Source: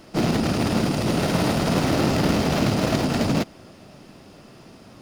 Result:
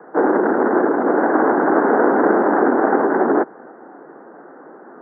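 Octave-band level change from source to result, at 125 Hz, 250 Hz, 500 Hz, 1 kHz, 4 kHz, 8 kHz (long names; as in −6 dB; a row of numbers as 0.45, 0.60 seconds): −16.0 dB, +4.0 dB, +10.0 dB, +10.5 dB, below −40 dB, below −40 dB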